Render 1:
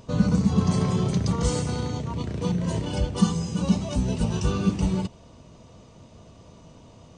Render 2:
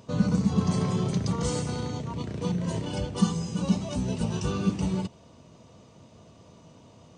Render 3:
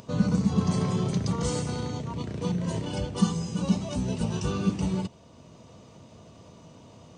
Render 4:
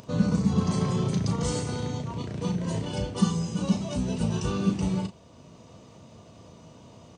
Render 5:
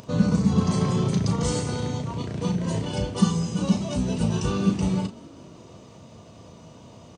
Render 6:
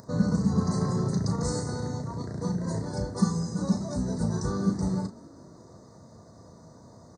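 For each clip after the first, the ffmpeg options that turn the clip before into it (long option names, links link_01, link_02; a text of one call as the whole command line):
ffmpeg -i in.wav -af "highpass=90,volume=-2.5dB" out.wav
ffmpeg -i in.wav -af "acompressor=mode=upward:threshold=-44dB:ratio=2.5" out.wav
ffmpeg -i in.wav -filter_complex "[0:a]asplit=2[link_01][link_02];[link_02]adelay=36,volume=-9dB[link_03];[link_01][link_03]amix=inputs=2:normalize=0" out.wav
ffmpeg -i in.wav -filter_complex "[0:a]asplit=6[link_01][link_02][link_03][link_04][link_05][link_06];[link_02]adelay=193,afreqshift=45,volume=-22dB[link_07];[link_03]adelay=386,afreqshift=90,volume=-26.3dB[link_08];[link_04]adelay=579,afreqshift=135,volume=-30.6dB[link_09];[link_05]adelay=772,afreqshift=180,volume=-34.9dB[link_10];[link_06]adelay=965,afreqshift=225,volume=-39.2dB[link_11];[link_01][link_07][link_08][link_09][link_10][link_11]amix=inputs=6:normalize=0,volume=3dB" out.wav
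ffmpeg -i in.wav -af "asuperstop=centerf=2800:order=8:qfactor=1.3,volume=-4dB" out.wav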